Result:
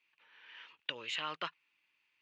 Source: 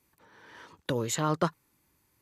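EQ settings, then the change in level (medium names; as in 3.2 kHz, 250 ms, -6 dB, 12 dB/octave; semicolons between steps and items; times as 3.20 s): band-pass filter 2.7 kHz, Q 5.4; distance through air 120 m; +12.0 dB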